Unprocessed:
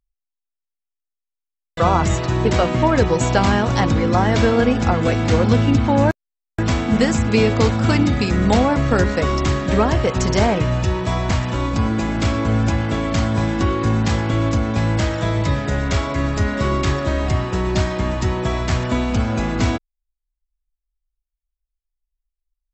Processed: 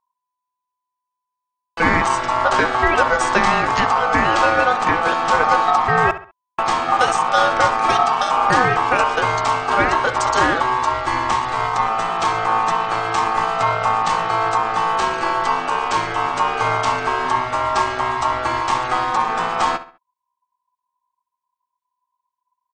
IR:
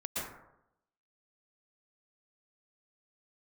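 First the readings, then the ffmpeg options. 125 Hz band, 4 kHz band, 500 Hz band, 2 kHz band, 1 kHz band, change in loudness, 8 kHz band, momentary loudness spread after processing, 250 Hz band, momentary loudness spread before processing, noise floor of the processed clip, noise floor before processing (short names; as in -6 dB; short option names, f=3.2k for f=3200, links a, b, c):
-14.5 dB, +1.5 dB, -2.0 dB, +6.5 dB, +9.0 dB, +1.0 dB, 0.0 dB, 5 LU, -10.5 dB, 5 LU, -82 dBFS, -84 dBFS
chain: -filter_complex "[0:a]asplit=2[a][b];[b]adelay=67,lowpass=f=3.2k:p=1,volume=-13.5dB,asplit=2[c][d];[d]adelay=67,lowpass=f=3.2k:p=1,volume=0.36,asplit=2[e][f];[f]adelay=67,lowpass=f=3.2k:p=1,volume=0.36[g];[a][c][e][g]amix=inputs=4:normalize=0,aeval=exprs='val(0)*sin(2*PI*1000*n/s)':c=same,volume=2.5dB"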